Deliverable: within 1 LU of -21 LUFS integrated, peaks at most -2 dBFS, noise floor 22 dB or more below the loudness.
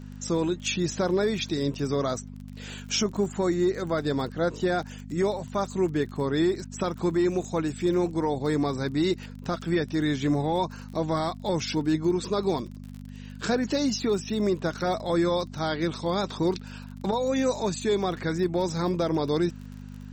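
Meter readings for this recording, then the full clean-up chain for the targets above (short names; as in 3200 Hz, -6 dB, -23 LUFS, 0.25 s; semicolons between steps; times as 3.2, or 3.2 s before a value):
ticks 37/s; hum 50 Hz; harmonics up to 250 Hz; hum level -38 dBFS; loudness -27.0 LUFS; peak -14.5 dBFS; loudness target -21.0 LUFS
-> de-click; de-hum 50 Hz, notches 5; gain +6 dB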